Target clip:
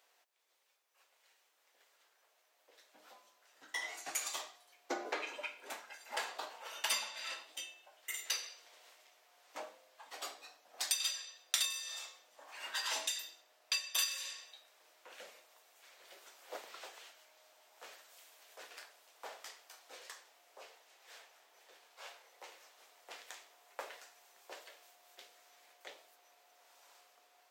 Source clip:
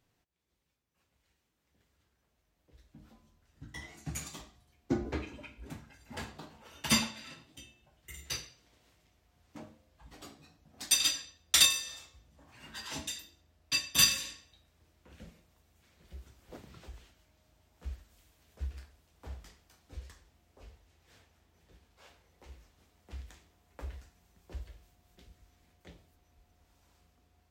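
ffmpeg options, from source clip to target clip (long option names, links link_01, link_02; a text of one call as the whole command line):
ffmpeg -i in.wav -af "highpass=frequency=530:width=0.5412,highpass=frequency=530:width=1.3066,acompressor=threshold=-42dB:ratio=5,volume=8dB" out.wav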